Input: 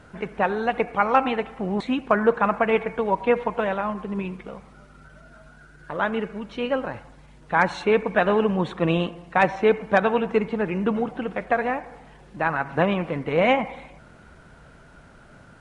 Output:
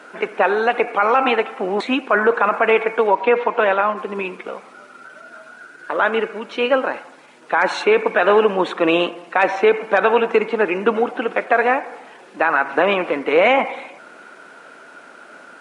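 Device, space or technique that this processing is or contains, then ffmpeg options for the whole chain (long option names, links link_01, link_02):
laptop speaker: -filter_complex "[0:a]asettb=1/sr,asplit=3[link_01][link_02][link_03];[link_01]atrim=end=3.074[link_04];[link_02]atrim=start=3.07:end=3.97,asetpts=PTS-STARTPTS,afade=type=in:duration=0.004:curve=qsin,afade=type=out:start_time=0.896:duration=0.004:curve=qsin,lowpass=5300[link_05];[link_03]atrim=start=3.966[link_06];[link_04][link_05]acrossfade=duration=0.004:curve1=hsin:curve2=qsin[link_07];[link_07][link_06]acrossfade=duration=0.004:curve1=qsin:curve2=hsin,highpass=frequency=290:width=0.5412,highpass=frequency=290:width=1.3066,equalizer=frequency=1400:width_type=o:width=0.4:gain=4,equalizer=frequency=2500:width_type=o:width=0.25:gain=4,alimiter=limit=-13.5dB:level=0:latency=1:release=28,volume=8.5dB"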